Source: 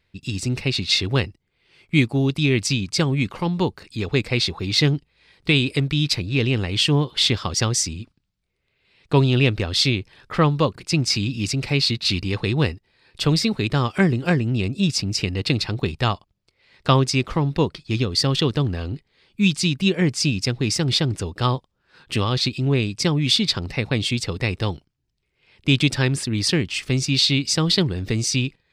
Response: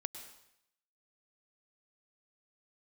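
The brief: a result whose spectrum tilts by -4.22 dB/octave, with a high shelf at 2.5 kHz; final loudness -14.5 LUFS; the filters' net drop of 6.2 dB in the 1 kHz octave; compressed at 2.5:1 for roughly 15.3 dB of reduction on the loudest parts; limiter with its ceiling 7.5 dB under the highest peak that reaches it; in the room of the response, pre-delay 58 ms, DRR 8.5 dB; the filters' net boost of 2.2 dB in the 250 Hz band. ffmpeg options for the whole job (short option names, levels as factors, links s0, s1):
-filter_complex "[0:a]equalizer=f=250:t=o:g=3.5,equalizer=f=1000:t=o:g=-9,highshelf=f=2500:g=5.5,acompressor=threshold=0.0178:ratio=2.5,alimiter=limit=0.0794:level=0:latency=1,asplit=2[s0][s1];[1:a]atrim=start_sample=2205,adelay=58[s2];[s1][s2]afir=irnorm=-1:irlink=0,volume=0.447[s3];[s0][s3]amix=inputs=2:normalize=0,volume=7.94"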